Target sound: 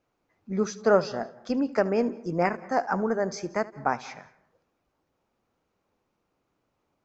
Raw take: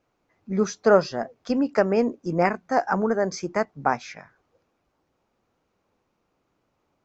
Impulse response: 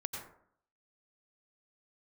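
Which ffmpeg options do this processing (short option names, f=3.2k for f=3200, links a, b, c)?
-filter_complex "[0:a]asplit=2[a][b];[1:a]atrim=start_sample=2205,adelay=76[c];[b][c]afir=irnorm=-1:irlink=0,volume=-17dB[d];[a][d]amix=inputs=2:normalize=0,volume=-3.5dB"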